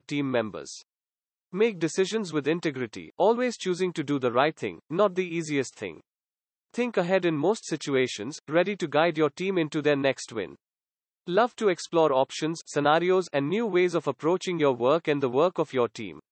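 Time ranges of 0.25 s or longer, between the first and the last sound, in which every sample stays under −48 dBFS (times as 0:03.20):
0:00.82–0:01.52
0:06.01–0:06.74
0:10.55–0:11.27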